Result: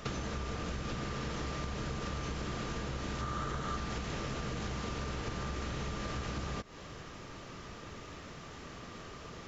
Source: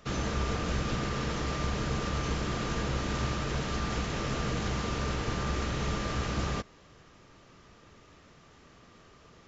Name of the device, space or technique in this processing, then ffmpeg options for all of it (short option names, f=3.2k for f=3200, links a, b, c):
serial compression, peaks first: -filter_complex "[0:a]acompressor=threshold=-38dB:ratio=6,acompressor=threshold=-46dB:ratio=2.5,asettb=1/sr,asplit=3[a][b][c];[a]atrim=end=3.214[d];[b]atrim=start=3.21:end=3.77,asetpts=PTS-STARTPTS,afade=t=in:d=0.004:c=qsin,afade=t=out:st=0.556:d=0.004:c=qsin,equalizer=f=1.25k:t=o:w=0.33:g=9,equalizer=f=2.5k:t=o:w=0.33:g=-6,equalizer=f=5k:t=o:w=0.33:g=-5[e];[c]atrim=start=3.766[f];[d][e]acrossfade=d=0.004:c1=hsin:c2=qsin[g];[g][f]acrossfade=d=0.004:c1=qsin:c2=hsin,volume=9dB"